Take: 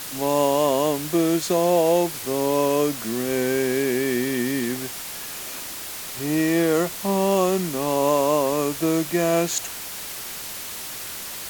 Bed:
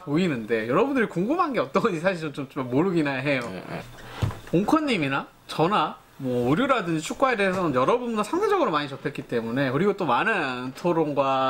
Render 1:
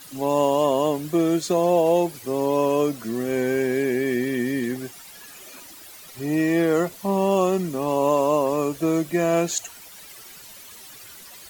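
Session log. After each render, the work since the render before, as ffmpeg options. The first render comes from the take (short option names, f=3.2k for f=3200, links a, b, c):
-af "afftdn=nr=13:nf=-34"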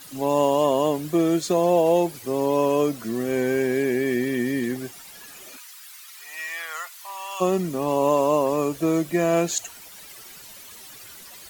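-filter_complex "[0:a]asplit=3[a][b][c];[a]afade=t=out:st=5.56:d=0.02[d];[b]highpass=f=1.1k:w=0.5412,highpass=f=1.1k:w=1.3066,afade=t=in:st=5.56:d=0.02,afade=t=out:st=7.4:d=0.02[e];[c]afade=t=in:st=7.4:d=0.02[f];[d][e][f]amix=inputs=3:normalize=0"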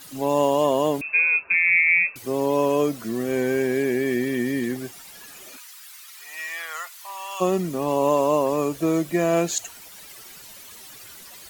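-filter_complex "[0:a]asettb=1/sr,asplit=3[a][b][c];[a]atrim=end=1.014[d];[b]atrim=start=1.01:end=2.16,asetpts=PTS-STARTPTS,afade=t=in:d=0.004:c=qsin,afade=t=out:st=1.146:d=0.004:c=qsin,lowpass=f=2.4k:t=q:w=0.5098,lowpass=f=2.4k:t=q:w=0.6013,lowpass=f=2.4k:t=q:w=0.9,lowpass=f=2.4k:t=q:w=2.563,afreqshift=-2800[e];[c]atrim=start=2.156[f];[d][e]acrossfade=d=0.004:c1=hsin:c2=qsin[g];[g][f]acrossfade=d=0.004:c1=qsin:c2=hsin"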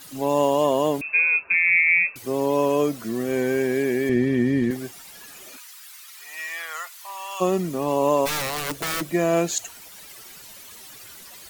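-filter_complex "[0:a]asettb=1/sr,asplit=3[a][b][c];[a]atrim=end=4.094[d];[b]atrim=start=4.09:end=4.71,asetpts=PTS-STARTPTS,afade=t=in:d=0.004:c=qsin,afade=t=out:st=0.616:d=0.004:c=qsin,aemphasis=mode=reproduction:type=bsi[e];[c]atrim=start=4.706[f];[d][e]acrossfade=d=0.004:c1=hsin:c2=qsin[g];[g][f]acrossfade=d=0.004:c1=qsin:c2=hsin,asplit=3[h][i][j];[h]afade=t=out:st=8.25:d=0.02[k];[i]aeval=exprs='(mod(11.9*val(0)+1,2)-1)/11.9':c=same,afade=t=in:st=8.25:d=0.02,afade=t=out:st=9:d=0.02[l];[j]afade=t=in:st=9:d=0.02[m];[k][l][m]amix=inputs=3:normalize=0"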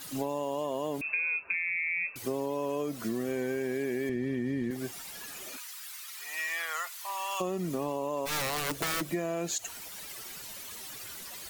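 -af "alimiter=limit=-15dB:level=0:latency=1:release=78,acompressor=threshold=-29dB:ratio=6"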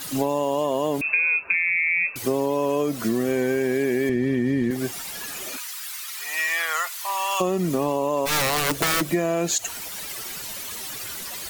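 -af "volume=9.5dB"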